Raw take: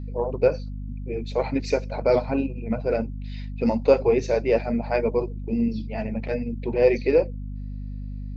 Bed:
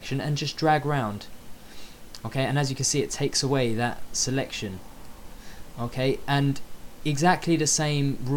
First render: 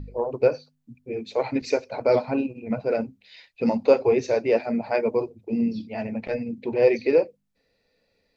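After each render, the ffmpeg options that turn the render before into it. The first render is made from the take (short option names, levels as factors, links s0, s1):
-af "bandreject=f=50:t=h:w=4,bandreject=f=100:t=h:w=4,bandreject=f=150:t=h:w=4,bandreject=f=200:t=h:w=4,bandreject=f=250:t=h:w=4"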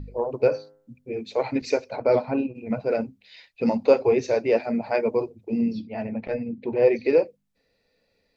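-filter_complex "[0:a]asplit=3[s0][s1][s2];[s0]afade=t=out:st=0.38:d=0.02[s3];[s1]bandreject=f=103.7:t=h:w=4,bandreject=f=207.4:t=h:w=4,bandreject=f=311.1:t=h:w=4,bandreject=f=414.8:t=h:w=4,bandreject=f=518.5:t=h:w=4,bandreject=f=622.2:t=h:w=4,bandreject=f=725.9:t=h:w=4,bandreject=f=829.6:t=h:w=4,bandreject=f=933.3:t=h:w=4,bandreject=f=1037:t=h:w=4,bandreject=f=1140.7:t=h:w=4,bandreject=f=1244.4:t=h:w=4,bandreject=f=1348.1:t=h:w=4,bandreject=f=1451.8:t=h:w=4,bandreject=f=1555.5:t=h:w=4,bandreject=f=1659.2:t=h:w=4,bandreject=f=1762.9:t=h:w=4,bandreject=f=1866.6:t=h:w=4,bandreject=f=1970.3:t=h:w=4,bandreject=f=2074:t=h:w=4,afade=t=in:st=0.38:d=0.02,afade=t=out:st=1.15:d=0.02[s4];[s2]afade=t=in:st=1.15:d=0.02[s5];[s3][s4][s5]amix=inputs=3:normalize=0,asettb=1/sr,asplit=3[s6][s7][s8];[s6]atrim=end=1.964[s9];[s7]atrim=start=1.96:end=2.55,asetpts=PTS-STARTPTS,afade=t=in:d=0.004:c=qsin,afade=t=out:st=0.586:d=0.004:c=qsin,lowpass=f=2900:p=1[s10];[s8]atrim=start=2.546[s11];[s9][s10]acrossfade=d=0.004:c1=hsin:c2=qsin[s12];[s12][s11]acrossfade=d=0.004:c1=qsin:c2=hsin,asettb=1/sr,asplit=3[s13][s14][s15];[s13]atrim=end=5.804[s16];[s14]atrim=start=5.8:end=7.05,asetpts=PTS-STARTPTS,afade=t=in:d=0.004:c=qsin,afade=t=out:st=1.246:d=0.004:c=qsin,highshelf=f=3800:g=-11.5[s17];[s15]atrim=start=7.046[s18];[s16][s17]acrossfade=d=0.004:c1=hsin:c2=qsin[s19];[s19][s18]acrossfade=d=0.004:c1=qsin:c2=hsin"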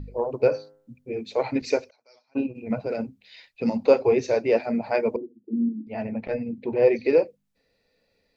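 -filter_complex "[0:a]asplit=3[s0][s1][s2];[s0]afade=t=out:st=1.89:d=0.02[s3];[s1]bandpass=f=5800:t=q:w=8.4,afade=t=in:st=1.89:d=0.02,afade=t=out:st=2.35:d=0.02[s4];[s2]afade=t=in:st=2.35:d=0.02[s5];[s3][s4][s5]amix=inputs=3:normalize=0,asettb=1/sr,asplit=3[s6][s7][s8];[s6]atrim=end=2.864[s9];[s7]atrim=start=2.86:end=3.87,asetpts=PTS-STARTPTS,afade=t=in:d=0.004:c=qsin,afade=t=out:st=1.006:d=0.004:c=qsin,acrossover=split=250|3000[s10][s11][s12];[s11]acompressor=threshold=0.0562:ratio=6:attack=3.2:release=140:knee=2.83:detection=peak[s13];[s10][s13][s12]amix=inputs=3:normalize=0[s14];[s8]atrim=start=3.866[s15];[s9][s14]acrossfade=d=0.004:c1=hsin:c2=qsin[s16];[s16][s15]acrossfade=d=0.004:c1=qsin:c2=hsin,asettb=1/sr,asplit=3[s17][s18][s19];[s17]atrim=end=5.164[s20];[s18]atrim=start=5.16:end=5.87,asetpts=PTS-STARTPTS,afade=t=in:d=0.004:c=qsin,afade=t=out:st=0.706:d=0.004:c=qsin,asuperpass=centerf=270:order=4:qfactor=2.1[s21];[s19]atrim=start=5.866[s22];[s20][s21]acrossfade=d=0.004:c1=hsin:c2=qsin[s23];[s23][s22]acrossfade=d=0.004:c1=qsin:c2=hsin"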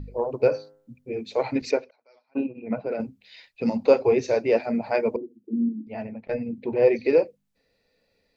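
-filter_complex "[0:a]asettb=1/sr,asplit=3[s0][s1][s2];[s0]atrim=end=1.714[s3];[s1]atrim=start=1.71:end=3,asetpts=PTS-STARTPTS,afade=t=in:d=0.004:c=qsin,afade=t=out:st=1.286:d=0.004:c=qsin,highpass=170,lowpass=2800[s4];[s2]atrim=start=2.996[s5];[s3][s4]acrossfade=d=0.004:c1=hsin:c2=qsin[s6];[s6][s5]acrossfade=d=0.004:c1=qsin:c2=hsin,asplit=2[s7][s8];[s7]atrim=end=6.29,asetpts=PTS-STARTPTS,afade=t=out:st=5.69:d=0.6:c=qsin:silence=0.141254[s9];[s8]atrim=start=6.29,asetpts=PTS-STARTPTS,afade=t=in:d=0.004:c=hsin:silence=0.141254[s10];[s9][s10]concat=n=2:v=0:a=1"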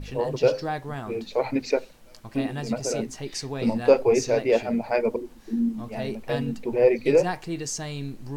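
-filter_complex "[1:a]volume=0.376[s0];[0:a][s0]amix=inputs=2:normalize=0"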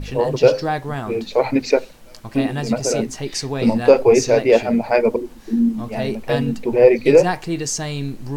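-af "volume=2.37,alimiter=limit=0.891:level=0:latency=1"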